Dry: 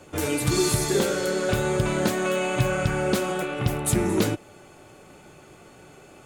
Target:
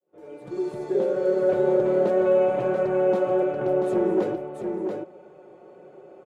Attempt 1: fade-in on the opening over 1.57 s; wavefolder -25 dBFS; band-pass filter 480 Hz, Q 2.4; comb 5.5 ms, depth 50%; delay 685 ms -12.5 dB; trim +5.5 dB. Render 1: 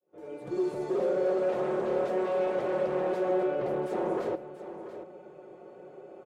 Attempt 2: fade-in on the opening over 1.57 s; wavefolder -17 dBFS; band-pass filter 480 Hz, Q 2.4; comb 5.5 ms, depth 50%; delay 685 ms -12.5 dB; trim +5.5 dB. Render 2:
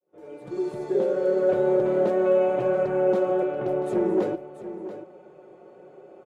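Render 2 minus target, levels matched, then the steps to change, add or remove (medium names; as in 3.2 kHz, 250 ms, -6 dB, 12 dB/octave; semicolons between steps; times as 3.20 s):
echo-to-direct -7 dB
change: delay 685 ms -5.5 dB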